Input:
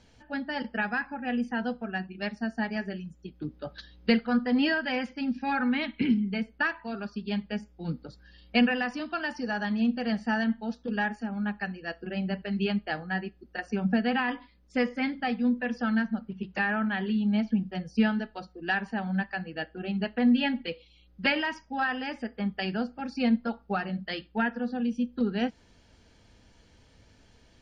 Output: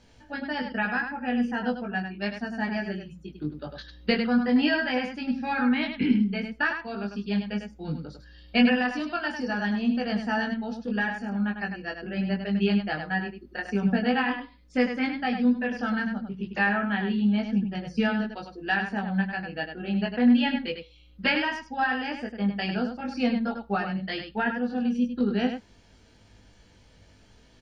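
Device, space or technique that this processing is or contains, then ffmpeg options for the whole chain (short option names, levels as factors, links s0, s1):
slapback doubling: -filter_complex "[0:a]asplit=3[s0][s1][s2];[s1]adelay=20,volume=0.708[s3];[s2]adelay=100,volume=0.473[s4];[s0][s3][s4]amix=inputs=3:normalize=0"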